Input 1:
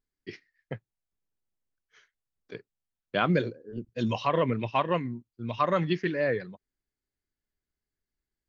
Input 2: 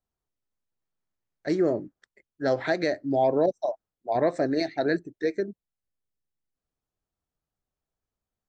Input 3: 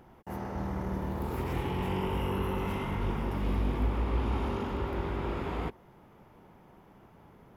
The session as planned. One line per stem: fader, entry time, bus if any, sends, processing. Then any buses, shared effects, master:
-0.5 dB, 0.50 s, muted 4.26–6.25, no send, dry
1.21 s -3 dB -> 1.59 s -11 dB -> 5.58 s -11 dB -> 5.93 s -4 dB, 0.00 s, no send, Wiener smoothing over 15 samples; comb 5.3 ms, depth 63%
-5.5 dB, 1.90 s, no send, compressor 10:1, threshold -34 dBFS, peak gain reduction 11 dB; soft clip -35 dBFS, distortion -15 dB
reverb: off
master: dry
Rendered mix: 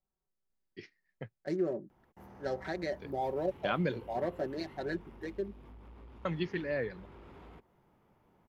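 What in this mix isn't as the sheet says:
stem 1 -0.5 dB -> -7.0 dB; stem 3 -5.5 dB -> -12.0 dB

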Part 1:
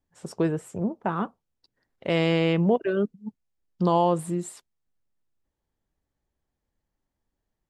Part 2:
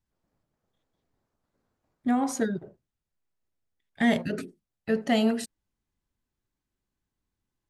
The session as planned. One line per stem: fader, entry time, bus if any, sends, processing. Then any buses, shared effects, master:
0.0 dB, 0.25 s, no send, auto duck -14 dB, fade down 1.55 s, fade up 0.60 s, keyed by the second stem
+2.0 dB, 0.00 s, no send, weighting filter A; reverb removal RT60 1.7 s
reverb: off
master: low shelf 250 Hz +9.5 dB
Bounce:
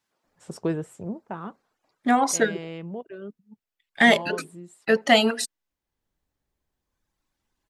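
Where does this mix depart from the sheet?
stem 2 +2.0 dB -> +11.0 dB; master: missing low shelf 250 Hz +9.5 dB

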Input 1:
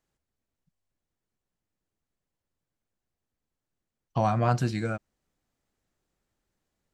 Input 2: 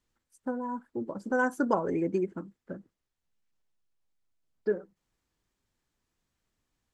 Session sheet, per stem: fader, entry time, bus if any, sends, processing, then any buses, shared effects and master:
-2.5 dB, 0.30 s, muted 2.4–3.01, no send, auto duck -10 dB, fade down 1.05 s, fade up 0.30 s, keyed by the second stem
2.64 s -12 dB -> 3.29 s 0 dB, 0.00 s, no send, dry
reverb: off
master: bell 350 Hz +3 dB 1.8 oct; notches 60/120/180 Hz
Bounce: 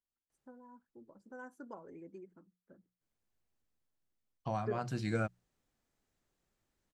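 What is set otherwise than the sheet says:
stem 2 -12.0 dB -> -22.0 dB; master: missing bell 350 Hz +3 dB 1.8 oct

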